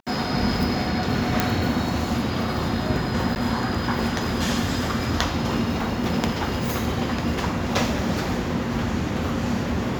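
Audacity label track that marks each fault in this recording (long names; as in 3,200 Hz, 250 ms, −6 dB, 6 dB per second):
1.400000	1.400000	click
3.350000	3.360000	drop-out 9.7 ms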